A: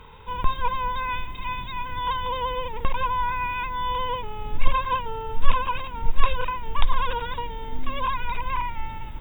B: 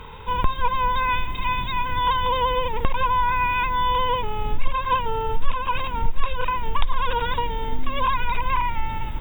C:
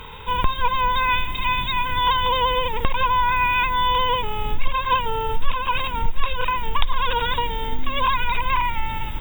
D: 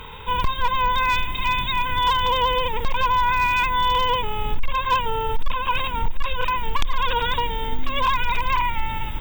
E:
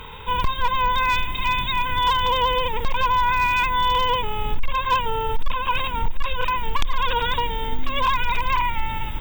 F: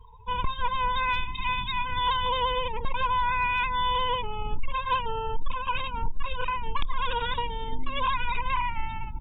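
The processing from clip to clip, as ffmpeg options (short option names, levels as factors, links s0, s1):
-af "acompressor=threshold=0.0631:ratio=2.5,volume=2.24"
-af "highshelf=f=2400:g=9.5"
-af "asoftclip=type=hard:threshold=0.224"
-af anull
-af "aeval=exprs='0.237*(cos(1*acos(clip(val(0)/0.237,-1,1)))-cos(1*PI/2))+0.0106*(cos(3*acos(clip(val(0)/0.237,-1,1)))-cos(3*PI/2))':c=same,afftdn=nr=32:nf=-31,volume=0.531"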